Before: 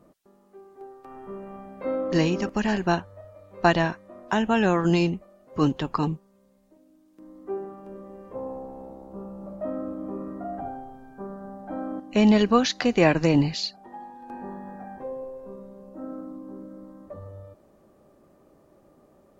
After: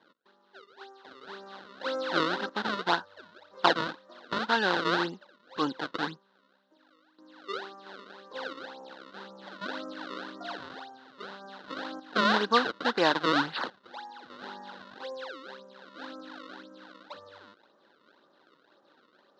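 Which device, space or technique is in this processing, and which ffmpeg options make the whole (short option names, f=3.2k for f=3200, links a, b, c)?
circuit-bent sampling toy: -af "acrusher=samples=31:mix=1:aa=0.000001:lfo=1:lforange=49.6:lforate=1.9,highpass=400,equalizer=f=400:t=q:w=4:g=-3,equalizer=f=650:t=q:w=4:g=-6,equalizer=f=950:t=q:w=4:g=4,equalizer=f=1.5k:t=q:w=4:g=9,equalizer=f=2.3k:t=q:w=4:g=-10,equalizer=f=3.9k:t=q:w=4:g=8,lowpass=f=4.4k:w=0.5412,lowpass=f=4.4k:w=1.3066,volume=-2dB"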